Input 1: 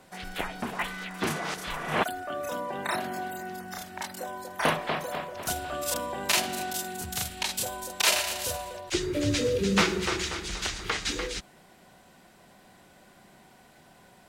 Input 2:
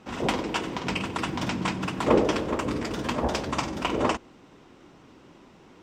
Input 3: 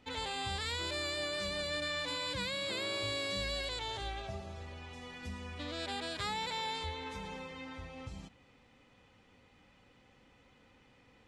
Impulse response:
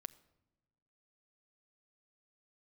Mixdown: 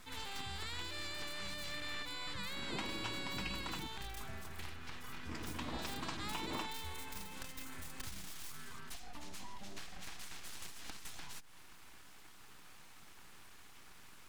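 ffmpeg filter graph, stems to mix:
-filter_complex "[0:a]highpass=f=210:p=1,acompressor=threshold=0.0126:ratio=4,aeval=exprs='abs(val(0))':c=same,volume=1.06,asplit=2[s0][s1];[s1]volume=0.251[s2];[1:a]adelay=2500,volume=0.299,asplit=3[s3][s4][s5];[s3]atrim=end=3.87,asetpts=PTS-STARTPTS,afade=t=out:st=3.866:d=0.004:c=hsin[s6];[s4]atrim=start=3.87:end=5.29,asetpts=PTS-STARTPTS,volume=0[s7];[s5]atrim=start=5.29,asetpts=PTS-STARTPTS,afade=t=in:d=0.004:c=hsin[s8];[s6][s7][s8]concat=n=3:v=0:a=1,asplit=2[s9][s10];[s10]volume=0.631[s11];[2:a]volume=0.447[s12];[s0][s9]amix=inputs=2:normalize=0,acompressor=threshold=0.00501:ratio=6,volume=1[s13];[3:a]atrim=start_sample=2205[s14];[s2][s11]amix=inputs=2:normalize=0[s15];[s15][s14]afir=irnorm=-1:irlink=0[s16];[s12][s13][s16]amix=inputs=3:normalize=0,equalizer=f=540:t=o:w=0.81:g=-8.5"

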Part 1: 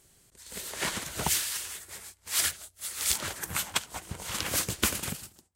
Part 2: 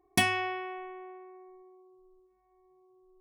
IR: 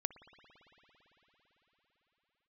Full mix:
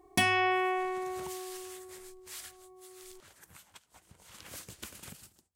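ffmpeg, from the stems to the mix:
-filter_complex "[0:a]acompressor=threshold=0.0178:ratio=5,volume=1.06,afade=t=in:st=0.84:d=0.48:silence=0.237137,afade=t=out:st=2.41:d=0.39:silence=0.375837,afade=t=in:st=4.3:d=0.27:silence=0.354813[s0];[1:a]acontrast=57,volume=1.41[s1];[s0][s1]amix=inputs=2:normalize=0,alimiter=limit=0.188:level=0:latency=1:release=487"

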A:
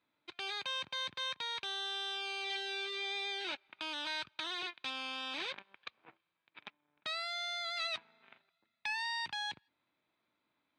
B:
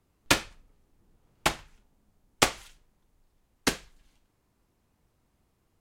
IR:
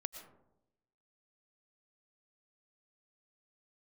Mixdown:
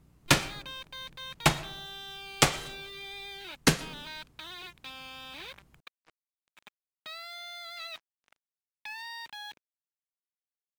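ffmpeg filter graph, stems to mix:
-filter_complex "[0:a]acrusher=bits=7:mix=0:aa=0.5,volume=0.631[s0];[1:a]equalizer=f=150:t=o:w=0.44:g=13,alimiter=limit=0.335:level=0:latency=1:release=141,aeval=exprs='val(0)+0.000355*(sin(2*PI*60*n/s)+sin(2*PI*2*60*n/s)/2+sin(2*PI*3*60*n/s)/3+sin(2*PI*4*60*n/s)/4+sin(2*PI*5*60*n/s)/5)':c=same,volume=1.26,asplit=2[s1][s2];[s2]volume=0.447[s3];[2:a]atrim=start_sample=2205[s4];[s3][s4]afir=irnorm=-1:irlink=0[s5];[s0][s1][s5]amix=inputs=3:normalize=0,asoftclip=type=tanh:threshold=0.447"

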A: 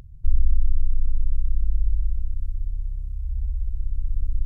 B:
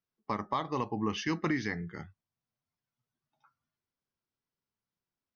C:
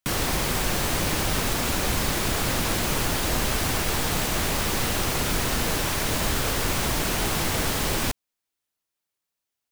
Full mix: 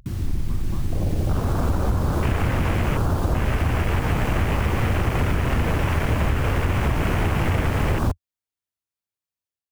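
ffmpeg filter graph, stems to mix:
-filter_complex "[0:a]volume=0.422[s0];[1:a]adelay=200,volume=0.2[s1];[2:a]dynaudnorm=f=860:g=3:m=4.22,afwtdn=0.112,equalizer=f=83:w=1:g=10.5,volume=0.75[s2];[s0][s1][s2]amix=inputs=3:normalize=0,acompressor=threshold=0.141:ratio=6"

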